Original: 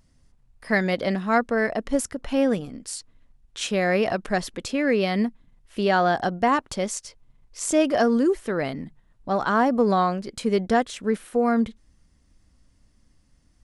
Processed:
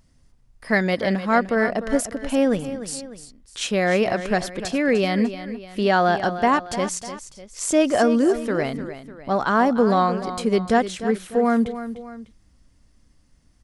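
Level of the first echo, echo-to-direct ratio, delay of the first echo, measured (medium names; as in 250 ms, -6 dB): -12.0 dB, -11.0 dB, 300 ms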